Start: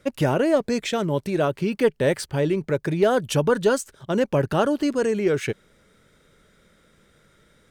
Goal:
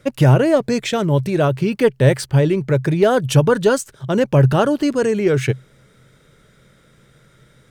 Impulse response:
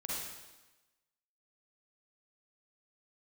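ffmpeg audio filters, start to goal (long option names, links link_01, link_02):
-af "equalizer=frequency=130:width=5.6:gain=14.5,volume=4.5dB"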